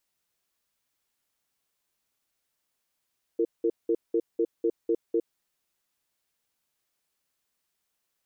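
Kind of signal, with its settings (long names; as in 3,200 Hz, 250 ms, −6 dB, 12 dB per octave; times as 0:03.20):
tone pair in a cadence 340 Hz, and 459 Hz, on 0.06 s, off 0.19 s, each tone −24 dBFS 2.00 s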